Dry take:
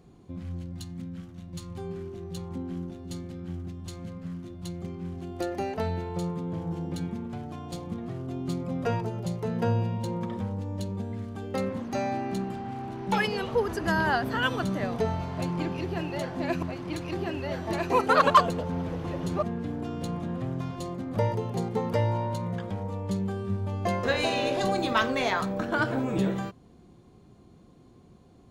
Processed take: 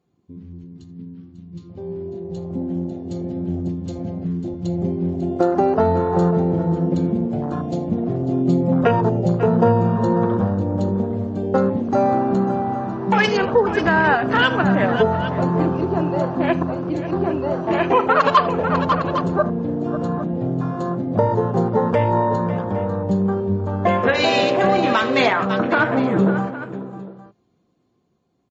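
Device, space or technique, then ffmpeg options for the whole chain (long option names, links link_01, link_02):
low-bitrate web radio: -filter_complex "[0:a]highpass=frequency=180:poles=1,afwtdn=0.0141,asettb=1/sr,asplit=3[link_01][link_02][link_03];[link_01]atrim=end=0.984[link_04];[link_02]atrim=start=0.98:end=2.08,asetpts=PTS-STARTPTS,afade=type=in:duration=0.004:curve=qsin,afade=type=out:start_time=1.096:duration=0.004:curve=qsin,lowpass=frequency=6000:width=0.5412,lowpass=frequency=6000:width=1.3066[link_05];[link_03]atrim=start=2.076[link_06];[link_04][link_05]acrossfade=duration=0.004:curve1=hsin:curve2=qsin[link_07];[link_07][link_06]acrossfade=duration=0.004:curve1=qsin:curve2=hsin,aecho=1:1:41|77|546|806:0.119|0.112|0.211|0.141,dynaudnorm=framelen=600:gausssize=9:maxgain=13dB,alimiter=limit=-9.5dB:level=0:latency=1:release=208,volume=4dB" -ar 32000 -c:a libmp3lame -b:a 32k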